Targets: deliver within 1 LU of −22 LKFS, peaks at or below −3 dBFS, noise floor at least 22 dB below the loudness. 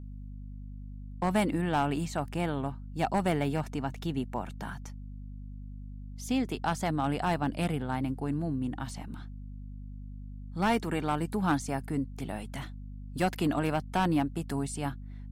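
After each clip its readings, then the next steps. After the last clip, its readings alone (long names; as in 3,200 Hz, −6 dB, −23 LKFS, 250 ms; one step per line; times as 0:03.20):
share of clipped samples 0.4%; peaks flattened at −20.0 dBFS; mains hum 50 Hz; hum harmonics up to 250 Hz; level of the hum −40 dBFS; integrated loudness −31.5 LKFS; sample peak −20.0 dBFS; target loudness −22.0 LKFS
→ clipped peaks rebuilt −20 dBFS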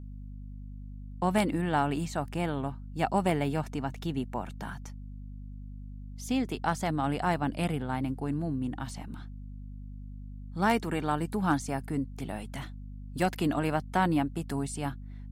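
share of clipped samples 0.0%; mains hum 50 Hz; hum harmonics up to 250 Hz; level of the hum −40 dBFS
→ mains-hum notches 50/100/150/200/250 Hz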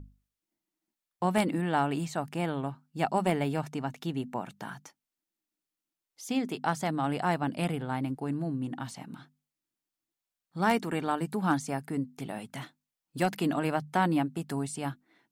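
mains hum none found; integrated loudness −31.5 LKFS; sample peak −11.5 dBFS; target loudness −22.0 LKFS
→ level +9.5 dB
brickwall limiter −3 dBFS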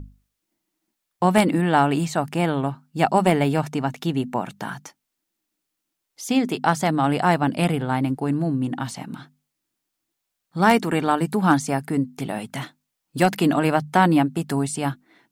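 integrated loudness −22.0 LKFS; sample peak −3.0 dBFS; background noise floor −80 dBFS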